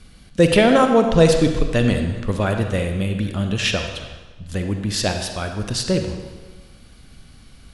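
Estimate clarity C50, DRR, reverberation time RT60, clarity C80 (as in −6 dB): 5.5 dB, 5.0 dB, 1.3 s, 7.0 dB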